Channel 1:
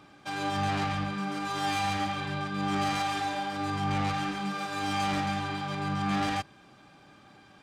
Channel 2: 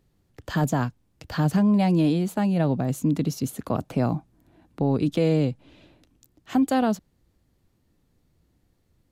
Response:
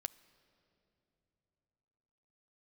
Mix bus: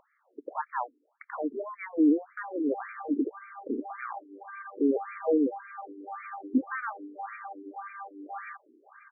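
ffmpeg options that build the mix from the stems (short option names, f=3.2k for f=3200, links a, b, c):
-filter_complex "[0:a]adelay=2150,volume=-6dB,asplit=2[a][b];[b]volume=-18dB[c];[1:a]volume=1dB,asplit=2[d][e];[e]volume=-19.5dB[f];[2:a]atrim=start_sample=2205[g];[c][f]amix=inputs=2:normalize=0[h];[h][g]afir=irnorm=-1:irlink=0[i];[a][d][i]amix=inputs=3:normalize=0,agate=range=-15dB:threshold=-58dB:ratio=16:detection=peak,acompressor=mode=upward:threshold=-29dB:ratio=2.5,afftfilt=real='re*between(b*sr/1024,310*pow(1700/310,0.5+0.5*sin(2*PI*1.8*pts/sr))/1.41,310*pow(1700/310,0.5+0.5*sin(2*PI*1.8*pts/sr))*1.41)':imag='im*between(b*sr/1024,310*pow(1700/310,0.5+0.5*sin(2*PI*1.8*pts/sr))/1.41,310*pow(1700/310,0.5+0.5*sin(2*PI*1.8*pts/sr))*1.41)':win_size=1024:overlap=0.75"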